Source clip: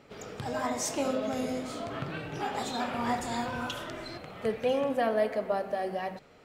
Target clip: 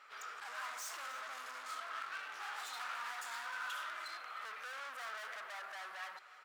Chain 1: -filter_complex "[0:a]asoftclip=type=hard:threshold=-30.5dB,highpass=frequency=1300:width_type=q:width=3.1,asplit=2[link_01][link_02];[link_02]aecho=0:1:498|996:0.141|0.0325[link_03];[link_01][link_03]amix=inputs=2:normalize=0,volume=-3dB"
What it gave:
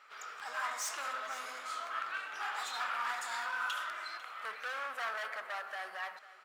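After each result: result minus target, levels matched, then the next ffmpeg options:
echo 191 ms late; hard clipping: distortion −5 dB
-filter_complex "[0:a]asoftclip=type=hard:threshold=-30.5dB,highpass=frequency=1300:width_type=q:width=3.1,asplit=2[link_01][link_02];[link_02]aecho=0:1:307|614:0.141|0.0325[link_03];[link_01][link_03]amix=inputs=2:normalize=0,volume=-3dB"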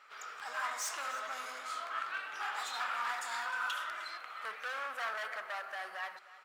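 hard clipping: distortion −5 dB
-filter_complex "[0:a]asoftclip=type=hard:threshold=-40.5dB,highpass=frequency=1300:width_type=q:width=3.1,asplit=2[link_01][link_02];[link_02]aecho=0:1:307|614:0.141|0.0325[link_03];[link_01][link_03]amix=inputs=2:normalize=0,volume=-3dB"

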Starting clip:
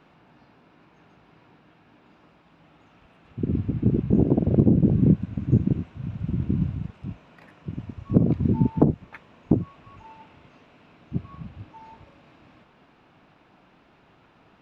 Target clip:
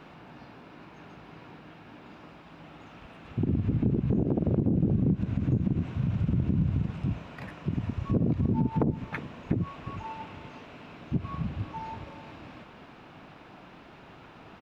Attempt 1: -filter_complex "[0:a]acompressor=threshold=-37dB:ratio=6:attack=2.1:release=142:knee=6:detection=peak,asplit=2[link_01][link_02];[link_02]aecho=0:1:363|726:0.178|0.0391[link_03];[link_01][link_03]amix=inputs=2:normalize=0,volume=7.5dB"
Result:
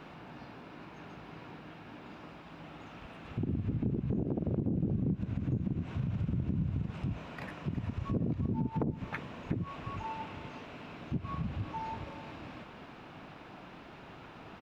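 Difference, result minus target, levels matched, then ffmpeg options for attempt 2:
downward compressor: peak gain reduction +6.5 dB
-filter_complex "[0:a]acompressor=threshold=-29dB:ratio=6:attack=2.1:release=142:knee=6:detection=peak,asplit=2[link_01][link_02];[link_02]aecho=0:1:363|726:0.178|0.0391[link_03];[link_01][link_03]amix=inputs=2:normalize=0,volume=7.5dB"

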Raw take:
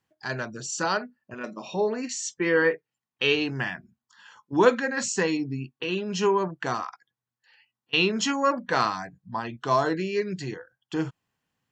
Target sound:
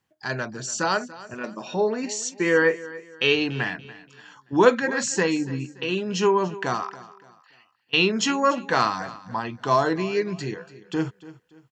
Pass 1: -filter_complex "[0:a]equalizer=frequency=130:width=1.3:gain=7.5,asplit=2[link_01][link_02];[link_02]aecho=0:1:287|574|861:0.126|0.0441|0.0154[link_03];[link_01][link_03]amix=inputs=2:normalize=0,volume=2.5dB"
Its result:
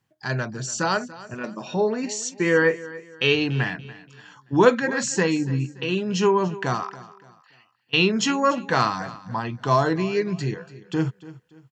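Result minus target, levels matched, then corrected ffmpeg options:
125 Hz band +5.5 dB
-filter_complex "[0:a]asplit=2[link_01][link_02];[link_02]aecho=0:1:287|574|861:0.126|0.0441|0.0154[link_03];[link_01][link_03]amix=inputs=2:normalize=0,volume=2.5dB"

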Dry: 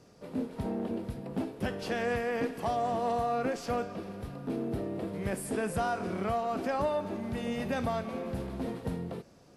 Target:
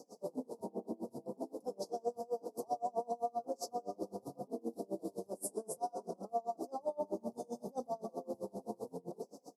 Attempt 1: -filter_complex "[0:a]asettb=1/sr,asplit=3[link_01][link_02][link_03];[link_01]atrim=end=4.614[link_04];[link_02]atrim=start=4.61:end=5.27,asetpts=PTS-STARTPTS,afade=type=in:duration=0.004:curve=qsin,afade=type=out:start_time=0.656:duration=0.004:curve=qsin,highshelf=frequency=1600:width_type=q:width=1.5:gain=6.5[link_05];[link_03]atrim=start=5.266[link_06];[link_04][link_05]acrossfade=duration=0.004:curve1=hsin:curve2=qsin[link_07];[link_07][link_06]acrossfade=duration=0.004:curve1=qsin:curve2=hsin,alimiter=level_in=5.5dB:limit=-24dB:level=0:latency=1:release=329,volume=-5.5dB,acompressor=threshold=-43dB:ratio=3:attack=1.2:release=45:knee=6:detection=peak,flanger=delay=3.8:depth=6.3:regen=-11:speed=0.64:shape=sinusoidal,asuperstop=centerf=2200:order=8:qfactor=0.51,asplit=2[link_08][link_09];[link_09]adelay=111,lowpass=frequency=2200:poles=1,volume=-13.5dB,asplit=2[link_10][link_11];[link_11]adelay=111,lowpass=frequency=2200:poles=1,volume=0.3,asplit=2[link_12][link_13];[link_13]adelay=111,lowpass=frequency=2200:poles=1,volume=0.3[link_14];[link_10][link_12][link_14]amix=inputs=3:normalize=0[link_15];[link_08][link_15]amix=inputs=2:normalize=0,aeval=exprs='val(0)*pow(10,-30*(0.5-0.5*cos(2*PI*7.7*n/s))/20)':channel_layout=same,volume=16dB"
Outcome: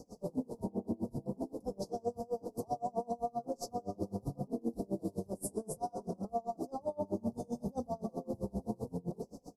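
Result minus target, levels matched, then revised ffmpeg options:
250 Hz band +4.0 dB
-filter_complex "[0:a]asettb=1/sr,asplit=3[link_01][link_02][link_03];[link_01]atrim=end=4.614[link_04];[link_02]atrim=start=4.61:end=5.27,asetpts=PTS-STARTPTS,afade=type=in:duration=0.004:curve=qsin,afade=type=out:start_time=0.656:duration=0.004:curve=qsin,highshelf=frequency=1600:width_type=q:width=1.5:gain=6.5[link_05];[link_03]atrim=start=5.266[link_06];[link_04][link_05]acrossfade=duration=0.004:curve1=hsin:curve2=qsin[link_07];[link_07][link_06]acrossfade=duration=0.004:curve1=qsin:curve2=hsin,alimiter=level_in=5.5dB:limit=-24dB:level=0:latency=1:release=329,volume=-5.5dB,acompressor=threshold=-43dB:ratio=3:attack=1.2:release=45:knee=6:detection=peak,highpass=340,flanger=delay=3.8:depth=6.3:regen=-11:speed=0.64:shape=sinusoidal,asuperstop=centerf=2200:order=8:qfactor=0.51,asplit=2[link_08][link_09];[link_09]adelay=111,lowpass=frequency=2200:poles=1,volume=-13.5dB,asplit=2[link_10][link_11];[link_11]adelay=111,lowpass=frequency=2200:poles=1,volume=0.3,asplit=2[link_12][link_13];[link_13]adelay=111,lowpass=frequency=2200:poles=1,volume=0.3[link_14];[link_10][link_12][link_14]amix=inputs=3:normalize=0[link_15];[link_08][link_15]amix=inputs=2:normalize=0,aeval=exprs='val(0)*pow(10,-30*(0.5-0.5*cos(2*PI*7.7*n/s))/20)':channel_layout=same,volume=16dB"

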